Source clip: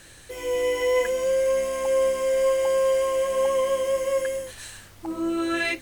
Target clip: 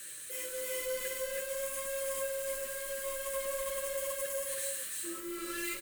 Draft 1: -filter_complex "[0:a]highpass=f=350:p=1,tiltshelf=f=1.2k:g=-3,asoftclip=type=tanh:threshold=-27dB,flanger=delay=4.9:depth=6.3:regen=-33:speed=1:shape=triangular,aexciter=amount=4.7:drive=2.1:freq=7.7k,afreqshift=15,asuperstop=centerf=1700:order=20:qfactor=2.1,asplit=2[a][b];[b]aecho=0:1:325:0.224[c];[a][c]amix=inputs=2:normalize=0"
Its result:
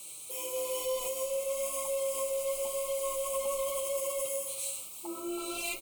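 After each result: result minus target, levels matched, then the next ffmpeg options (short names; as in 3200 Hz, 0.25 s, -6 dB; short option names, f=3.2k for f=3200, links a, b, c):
echo-to-direct -11 dB; 2000 Hz band -7.0 dB; soft clip: distortion -5 dB
-filter_complex "[0:a]highpass=f=350:p=1,tiltshelf=f=1.2k:g=-3,asoftclip=type=tanh:threshold=-27dB,flanger=delay=4.9:depth=6.3:regen=-33:speed=1:shape=triangular,aexciter=amount=4.7:drive=2.1:freq=7.7k,afreqshift=15,asuperstop=centerf=1700:order=20:qfactor=2.1,asplit=2[a][b];[b]aecho=0:1:325:0.794[c];[a][c]amix=inputs=2:normalize=0"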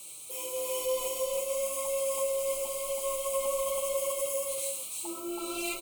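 2000 Hz band -7.5 dB; soft clip: distortion -5 dB
-filter_complex "[0:a]highpass=f=350:p=1,tiltshelf=f=1.2k:g=-3,asoftclip=type=tanh:threshold=-27dB,flanger=delay=4.9:depth=6.3:regen=-33:speed=1:shape=triangular,aexciter=amount=4.7:drive=2.1:freq=7.7k,afreqshift=15,asuperstop=centerf=820:order=20:qfactor=2.1,asplit=2[a][b];[b]aecho=0:1:325:0.794[c];[a][c]amix=inputs=2:normalize=0"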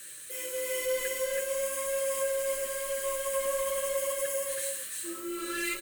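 soft clip: distortion -5 dB
-filter_complex "[0:a]highpass=f=350:p=1,tiltshelf=f=1.2k:g=-3,asoftclip=type=tanh:threshold=-35dB,flanger=delay=4.9:depth=6.3:regen=-33:speed=1:shape=triangular,aexciter=amount=4.7:drive=2.1:freq=7.7k,afreqshift=15,asuperstop=centerf=820:order=20:qfactor=2.1,asplit=2[a][b];[b]aecho=0:1:325:0.794[c];[a][c]amix=inputs=2:normalize=0"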